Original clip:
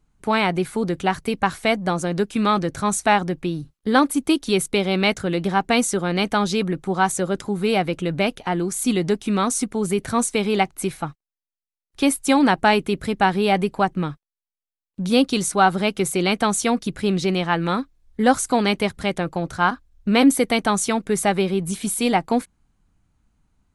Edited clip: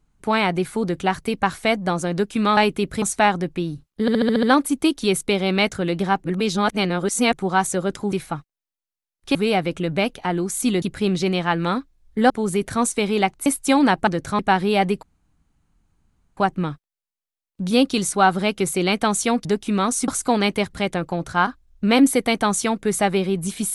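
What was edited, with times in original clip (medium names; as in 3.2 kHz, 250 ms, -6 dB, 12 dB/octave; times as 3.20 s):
2.57–2.89 s: swap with 12.67–13.12 s
3.88 s: stutter 0.07 s, 7 plays
5.69–6.78 s: reverse
9.04–9.67 s: swap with 16.84–18.32 s
10.83–12.06 s: move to 7.57 s
13.76 s: insert room tone 1.34 s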